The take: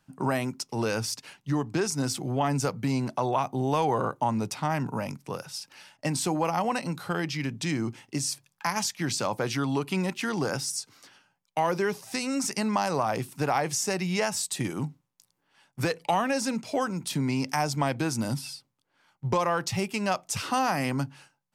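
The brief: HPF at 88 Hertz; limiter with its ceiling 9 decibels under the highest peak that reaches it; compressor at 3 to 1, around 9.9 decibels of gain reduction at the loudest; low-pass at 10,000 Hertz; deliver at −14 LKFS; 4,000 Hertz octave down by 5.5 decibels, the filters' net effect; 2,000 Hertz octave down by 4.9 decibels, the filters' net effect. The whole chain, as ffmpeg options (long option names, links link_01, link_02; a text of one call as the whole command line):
ffmpeg -i in.wav -af "highpass=88,lowpass=10000,equalizer=frequency=2000:width_type=o:gain=-5,equalizer=frequency=4000:width_type=o:gain=-6.5,acompressor=threshold=-36dB:ratio=3,volume=25.5dB,alimiter=limit=-4dB:level=0:latency=1" out.wav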